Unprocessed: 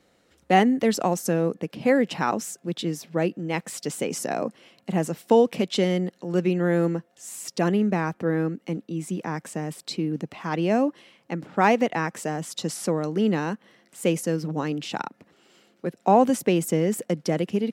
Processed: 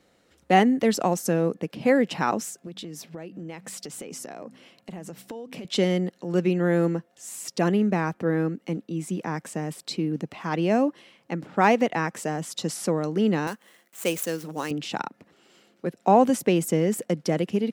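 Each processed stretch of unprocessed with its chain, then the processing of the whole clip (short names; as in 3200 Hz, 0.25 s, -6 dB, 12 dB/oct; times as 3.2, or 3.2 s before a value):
2.49–5.65 de-hum 64.07 Hz, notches 4 + compressor 16:1, threshold -33 dBFS
13.47–14.71 median filter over 9 samples + expander -59 dBFS + RIAA curve recording
whole clip: dry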